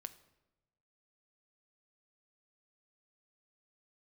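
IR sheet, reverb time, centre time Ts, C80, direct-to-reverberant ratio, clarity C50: 1.0 s, 5 ms, 18.0 dB, 10.0 dB, 16.0 dB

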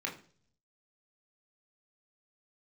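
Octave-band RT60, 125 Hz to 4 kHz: 0.95, 0.70, 0.55, 0.40, 0.40, 0.50 s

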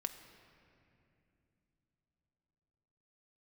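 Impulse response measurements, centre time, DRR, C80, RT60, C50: 25 ms, 6.5 dB, 10.5 dB, not exponential, 9.5 dB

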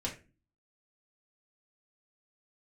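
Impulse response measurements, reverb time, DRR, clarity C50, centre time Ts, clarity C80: 0.30 s, -4.0 dB, 10.5 dB, 18 ms, 16.0 dB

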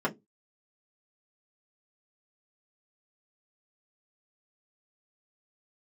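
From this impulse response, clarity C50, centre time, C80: 21.5 dB, 9 ms, 31.0 dB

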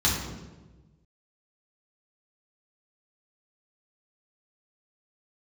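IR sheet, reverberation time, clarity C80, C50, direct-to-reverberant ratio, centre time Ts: 1.2 s, 5.5 dB, 2.5 dB, -6.0 dB, 55 ms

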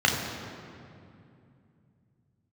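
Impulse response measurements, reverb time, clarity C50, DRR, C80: 2.5 s, 3.5 dB, -1.0 dB, 4.5 dB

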